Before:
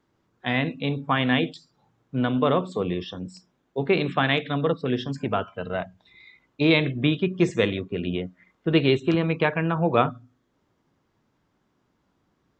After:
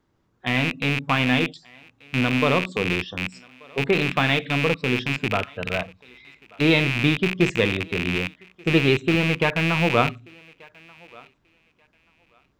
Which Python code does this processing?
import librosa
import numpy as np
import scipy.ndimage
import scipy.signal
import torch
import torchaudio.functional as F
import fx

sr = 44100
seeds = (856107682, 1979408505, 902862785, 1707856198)

y = fx.rattle_buzz(x, sr, strikes_db=-33.0, level_db=-13.0)
y = fx.low_shelf(y, sr, hz=72.0, db=10.0)
y = fx.echo_thinned(y, sr, ms=1184, feedback_pct=21, hz=450.0, wet_db=-24)